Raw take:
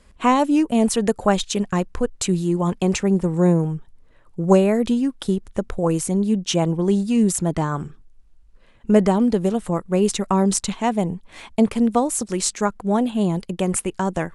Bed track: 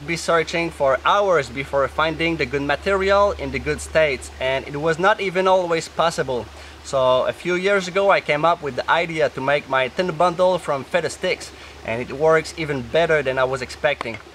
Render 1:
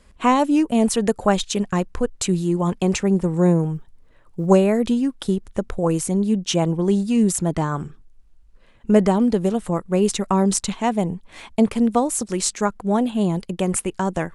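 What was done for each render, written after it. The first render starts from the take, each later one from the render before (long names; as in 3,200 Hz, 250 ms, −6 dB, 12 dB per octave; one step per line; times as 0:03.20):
0:03.75–0:04.47: floating-point word with a short mantissa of 6 bits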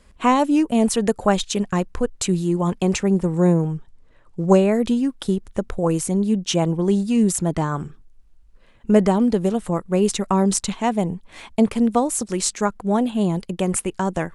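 0:03.54–0:04.72: low-pass filter 9,400 Hz 24 dB per octave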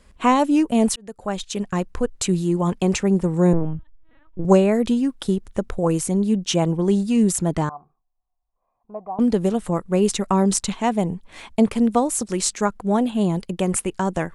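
0:00.96–0:02.34: fade in equal-power
0:03.53–0:04.45: linear-prediction vocoder at 8 kHz pitch kept
0:07.69–0:09.19: formant resonators in series a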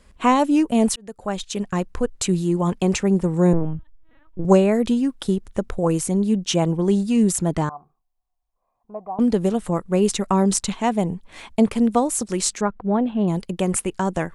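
0:12.61–0:13.28: high-frequency loss of the air 400 metres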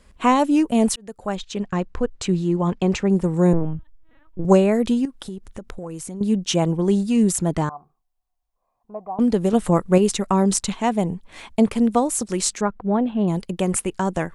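0:01.35–0:03.10: high-frequency loss of the air 90 metres
0:05.05–0:06.21: downward compressor 4 to 1, threshold −31 dBFS
0:09.53–0:09.98: clip gain +5 dB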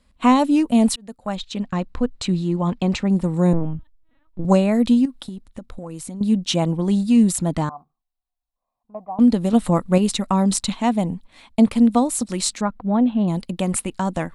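noise gate −37 dBFS, range −8 dB
thirty-one-band graphic EQ 250 Hz +6 dB, 400 Hz −9 dB, 1,600 Hz −3 dB, 4,000 Hz +6 dB, 6,300 Hz −4 dB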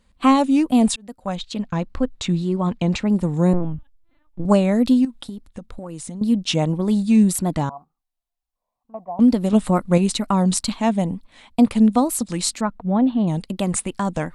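tape wow and flutter 120 cents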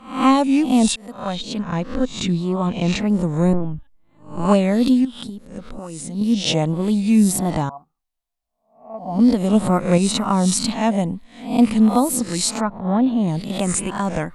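peak hold with a rise ahead of every peak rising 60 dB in 0.46 s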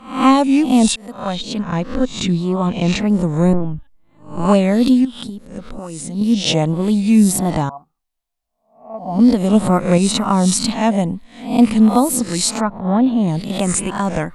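level +3 dB
brickwall limiter −1 dBFS, peak gain reduction 1.5 dB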